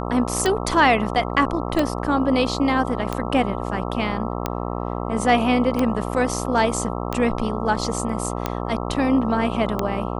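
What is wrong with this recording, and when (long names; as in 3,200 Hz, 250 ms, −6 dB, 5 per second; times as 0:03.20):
mains buzz 60 Hz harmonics 22 −27 dBFS
scratch tick 45 rpm −8 dBFS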